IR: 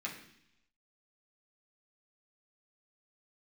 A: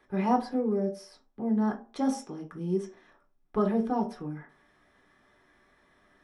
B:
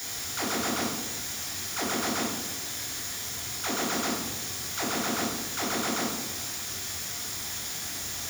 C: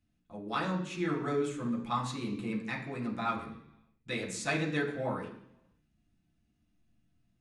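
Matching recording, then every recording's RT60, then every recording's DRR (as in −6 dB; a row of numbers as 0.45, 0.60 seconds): C; 0.40, 1.1, 0.70 seconds; 0.5, −1.5, −3.5 decibels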